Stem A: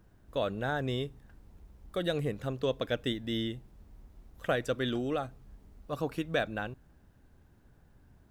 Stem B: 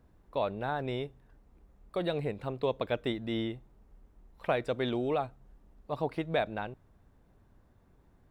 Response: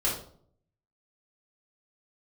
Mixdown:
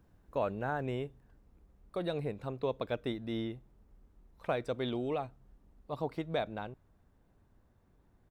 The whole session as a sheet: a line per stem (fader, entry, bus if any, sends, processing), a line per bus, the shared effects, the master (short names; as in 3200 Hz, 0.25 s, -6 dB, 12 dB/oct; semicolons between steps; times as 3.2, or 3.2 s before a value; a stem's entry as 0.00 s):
-6.5 dB, 0.00 s, no send, auto duck -11 dB, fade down 1.75 s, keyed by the second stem
-4.5 dB, 0.5 ms, no send, dry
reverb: off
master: dry